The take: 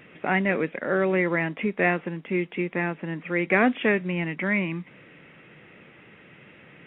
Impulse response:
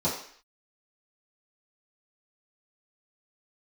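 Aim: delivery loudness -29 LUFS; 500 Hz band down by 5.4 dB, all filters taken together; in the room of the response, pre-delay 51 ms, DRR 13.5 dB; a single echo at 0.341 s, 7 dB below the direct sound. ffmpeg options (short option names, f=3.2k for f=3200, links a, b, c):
-filter_complex "[0:a]equalizer=f=500:t=o:g=-7.5,aecho=1:1:341:0.447,asplit=2[a][b];[1:a]atrim=start_sample=2205,adelay=51[c];[b][c]afir=irnorm=-1:irlink=0,volume=-24dB[d];[a][d]amix=inputs=2:normalize=0,volume=-3dB"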